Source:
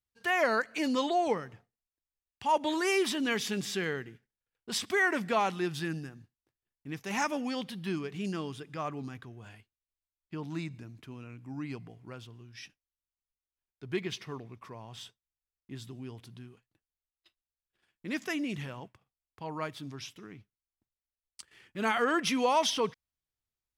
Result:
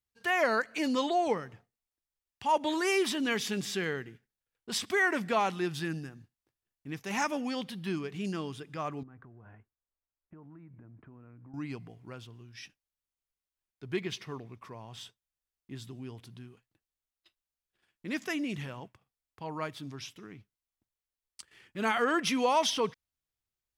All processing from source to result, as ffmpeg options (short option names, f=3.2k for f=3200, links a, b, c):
-filter_complex "[0:a]asettb=1/sr,asplit=3[a][b][c];[a]atrim=end=9.034[d];[b]atrim=start=9.03:end=11.54,asetpts=PTS-STARTPTS,afade=t=in:d=0.004:c=qsin,afade=t=out:st=2.506:d=0.004:c=qsin,lowpass=f=1.6k:w=0.5412,lowpass=f=1.6k:w=1.3066,acompressor=threshold=-48dB:ratio=10:attack=3.2:release=140:knee=1:detection=peak[e];[c]atrim=start=11.536[f];[d][e]acrossfade=d=0.004:c1=hsin:c2=qsin[g];[g][f]acrossfade=d=0.004:c1=qsin:c2=hsin"